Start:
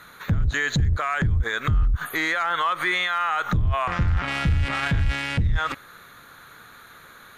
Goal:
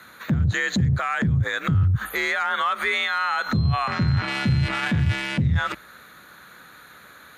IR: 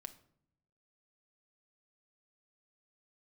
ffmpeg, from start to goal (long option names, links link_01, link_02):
-filter_complex "[0:a]asettb=1/sr,asplit=3[link_01][link_02][link_03];[link_01]atrim=end=3.084[link_04];[link_02]atrim=start=3.08:end=4.7,asetpts=PTS-STARTPTS,afade=type=in:duration=0.004:curve=qsin,afade=type=out:start_time=1.616:duration=0.004:curve=qsin,aeval=exprs='val(0)+0.0112*sin(2*PI*4100*n/s)':channel_layout=same[link_05];[link_03]atrim=start=4.696[link_06];[link_04][link_05]acrossfade=duration=0.004:curve1=hsin:curve2=qsin[link_07];[link_07][link_06]acrossfade=duration=0.004:curve1=qsin:curve2=hsin,afreqshift=52"